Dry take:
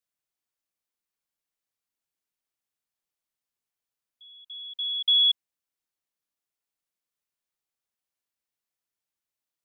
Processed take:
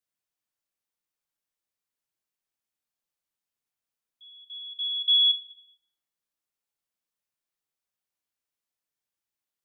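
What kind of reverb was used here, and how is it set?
dense smooth reverb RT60 0.81 s, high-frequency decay 0.75×, DRR 5 dB
level −2 dB

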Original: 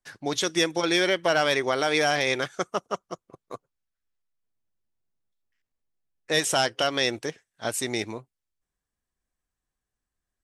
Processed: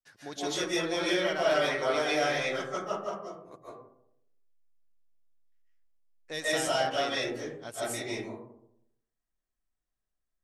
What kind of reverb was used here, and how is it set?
comb and all-pass reverb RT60 0.76 s, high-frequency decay 0.35×, pre-delay 105 ms, DRR −8 dB
level −13.5 dB

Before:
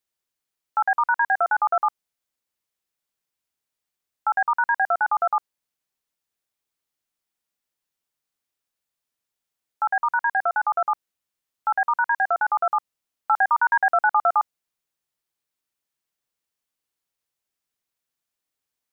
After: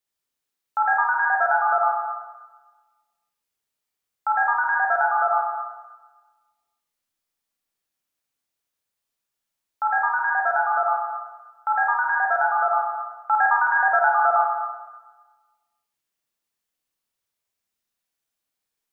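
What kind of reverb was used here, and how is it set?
four-comb reverb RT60 1.3 s, combs from 27 ms, DRR −1 dB
level −2 dB

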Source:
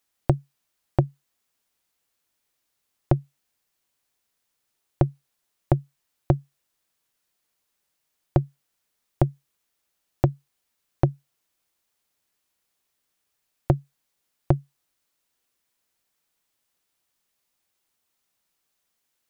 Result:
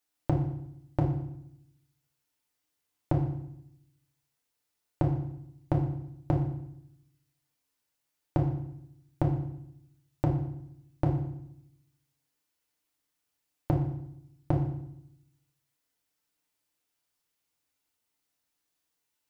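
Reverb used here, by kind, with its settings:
feedback delay network reverb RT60 0.74 s, low-frequency decay 1.4×, high-frequency decay 0.95×, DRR −1.5 dB
level −8.5 dB

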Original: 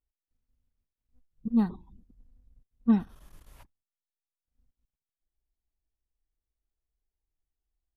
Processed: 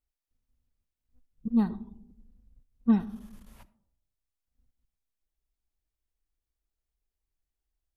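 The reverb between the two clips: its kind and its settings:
comb and all-pass reverb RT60 0.77 s, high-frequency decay 0.25×, pre-delay 20 ms, DRR 17.5 dB

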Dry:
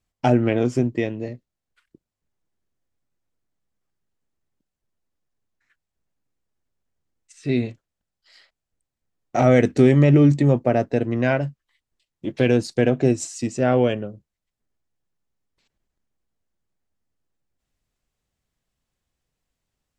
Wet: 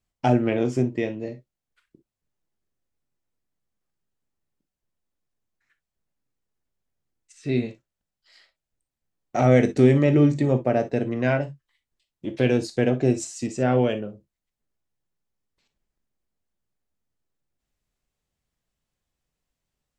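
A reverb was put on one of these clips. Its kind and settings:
reverb whose tail is shaped and stops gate 80 ms flat, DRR 9 dB
level −3 dB

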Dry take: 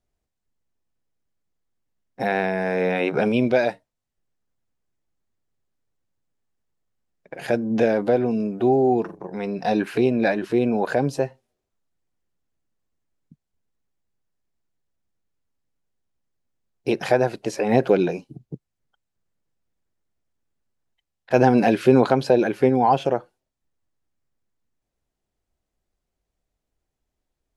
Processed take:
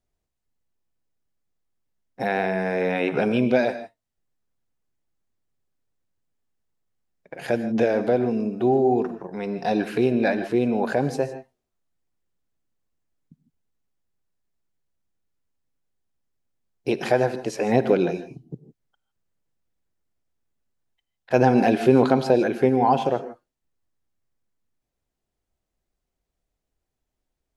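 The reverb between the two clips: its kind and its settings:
reverb whose tail is shaped and stops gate 180 ms rising, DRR 11.5 dB
level −1.5 dB

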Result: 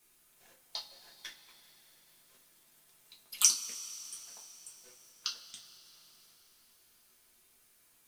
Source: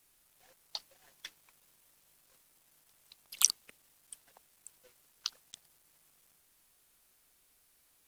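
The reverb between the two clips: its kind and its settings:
coupled-rooms reverb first 0.23 s, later 4.2 s, from −22 dB, DRR −4 dB
level −2.5 dB

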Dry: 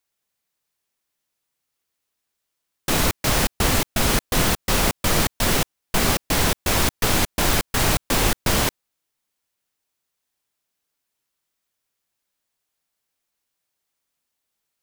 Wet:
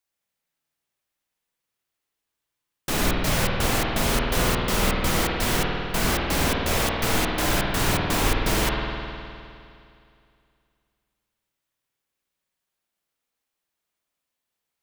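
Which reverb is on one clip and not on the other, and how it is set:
spring reverb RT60 2.5 s, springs 51 ms, chirp 40 ms, DRR −1.5 dB
level −5 dB

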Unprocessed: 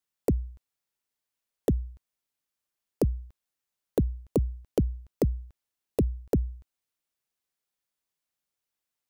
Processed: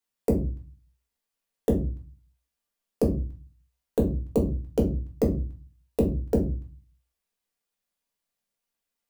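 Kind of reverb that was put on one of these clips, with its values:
rectangular room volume 170 cubic metres, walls furnished, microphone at 1.7 metres
level −1.5 dB

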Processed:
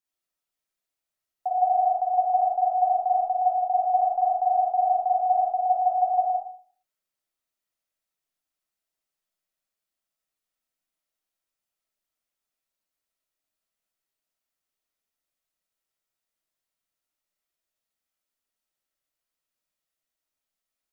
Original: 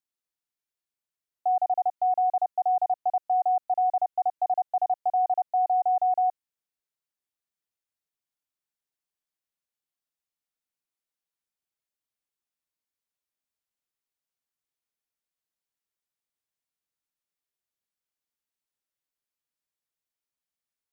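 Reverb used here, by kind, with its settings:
comb and all-pass reverb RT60 0.48 s, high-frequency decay 0.4×, pre-delay 10 ms, DRR −4 dB
level −1 dB

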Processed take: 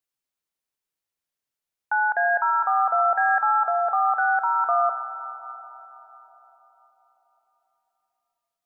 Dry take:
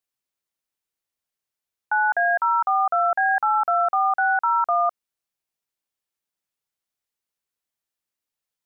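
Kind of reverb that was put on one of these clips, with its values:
comb and all-pass reverb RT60 4.7 s, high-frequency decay 0.3×, pre-delay 25 ms, DRR 9 dB
level −1.5 dB

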